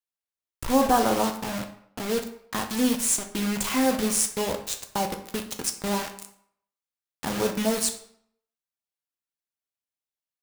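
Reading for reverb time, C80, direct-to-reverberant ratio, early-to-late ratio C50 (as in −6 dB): 0.65 s, 13.0 dB, 4.5 dB, 10.0 dB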